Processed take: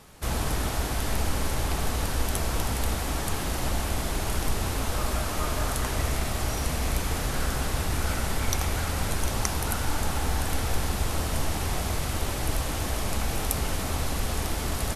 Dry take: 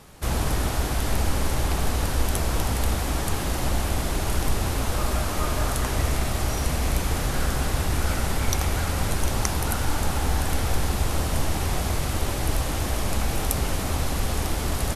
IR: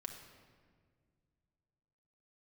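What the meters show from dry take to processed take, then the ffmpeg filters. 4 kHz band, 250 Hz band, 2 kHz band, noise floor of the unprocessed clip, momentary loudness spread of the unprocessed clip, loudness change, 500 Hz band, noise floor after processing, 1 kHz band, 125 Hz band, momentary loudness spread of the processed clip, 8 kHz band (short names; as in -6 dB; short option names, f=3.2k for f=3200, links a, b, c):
-1.5 dB, -3.0 dB, -1.5 dB, -27 dBFS, 1 LU, -3.0 dB, -3.0 dB, -30 dBFS, -2.5 dB, -4.0 dB, 1 LU, -1.5 dB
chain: -filter_complex "[0:a]asplit=2[a][b];[1:a]atrim=start_sample=2205,lowshelf=f=440:g=-11[c];[b][c]afir=irnorm=-1:irlink=0,volume=-3.5dB[d];[a][d]amix=inputs=2:normalize=0,volume=-4.5dB"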